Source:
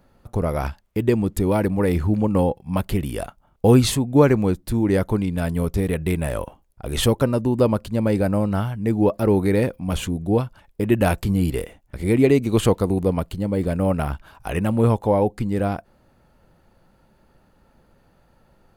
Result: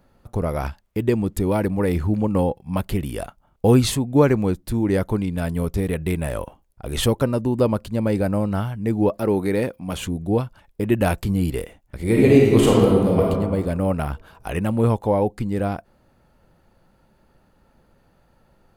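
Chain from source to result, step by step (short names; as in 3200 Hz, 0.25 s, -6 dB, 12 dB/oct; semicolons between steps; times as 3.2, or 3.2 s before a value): 9.19–10.01 HPF 170 Hz 6 dB/oct; 12.02–13.26 reverb throw, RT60 1.6 s, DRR -3.5 dB; gain -1 dB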